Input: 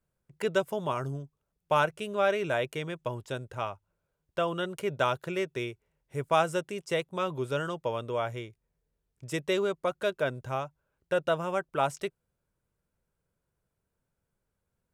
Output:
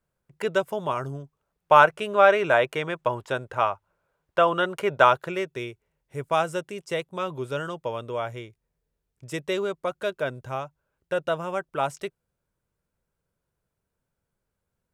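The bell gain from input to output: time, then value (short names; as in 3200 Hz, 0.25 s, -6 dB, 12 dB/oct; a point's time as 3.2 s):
bell 1100 Hz 2.9 oct
1.03 s +4.5 dB
1.82 s +12 dB
5.07 s +12 dB
5.52 s +1.5 dB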